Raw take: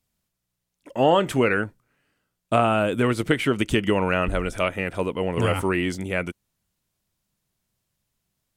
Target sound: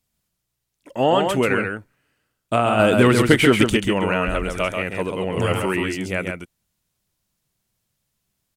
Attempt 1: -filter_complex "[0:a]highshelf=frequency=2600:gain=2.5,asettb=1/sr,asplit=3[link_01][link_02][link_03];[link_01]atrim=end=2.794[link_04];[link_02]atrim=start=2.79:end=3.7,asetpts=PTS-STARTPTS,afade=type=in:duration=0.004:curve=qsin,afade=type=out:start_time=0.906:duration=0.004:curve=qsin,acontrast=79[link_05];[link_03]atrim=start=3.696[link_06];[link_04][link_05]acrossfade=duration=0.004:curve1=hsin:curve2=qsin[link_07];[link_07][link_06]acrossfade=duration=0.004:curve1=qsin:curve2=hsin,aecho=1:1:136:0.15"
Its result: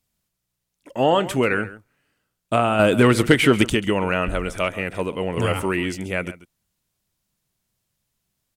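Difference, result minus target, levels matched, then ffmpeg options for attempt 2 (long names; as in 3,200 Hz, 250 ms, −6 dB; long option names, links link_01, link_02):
echo-to-direct −11.5 dB
-filter_complex "[0:a]highshelf=frequency=2600:gain=2.5,asettb=1/sr,asplit=3[link_01][link_02][link_03];[link_01]atrim=end=2.794[link_04];[link_02]atrim=start=2.79:end=3.7,asetpts=PTS-STARTPTS,afade=type=in:duration=0.004:curve=qsin,afade=type=out:start_time=0.906:duration=0.004:curve=qsin,acontrast=79[link_05];[link_03]atrim=start=3.696[link_06];[link_04][link_05]acrossfade=duration=0.004:curve1=hsin:curve2=qsin[link_07];[link_07][link_06]acrossfade=duration=0.004:curve1=qsin:curve2=hsin,aecho=1:1:136:0.562"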